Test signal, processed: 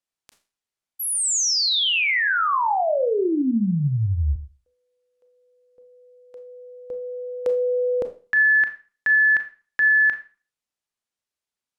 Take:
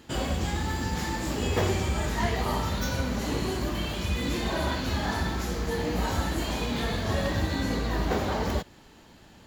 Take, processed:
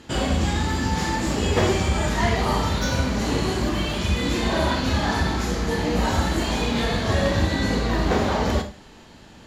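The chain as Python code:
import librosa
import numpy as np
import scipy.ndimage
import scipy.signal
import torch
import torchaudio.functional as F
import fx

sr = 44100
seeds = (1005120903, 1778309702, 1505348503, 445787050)

y = scipy.signal.sosfilt(scipy.signal.butter(2, 9800.0, 'lowpass', fs=sr, output='sos'), x)
y = fx.rev_schroeder(y, sr, rt60_s=0.36, comb_ms=27, drr_db=7.0)
y = y * 10.0 ** (5.5 / 20.0)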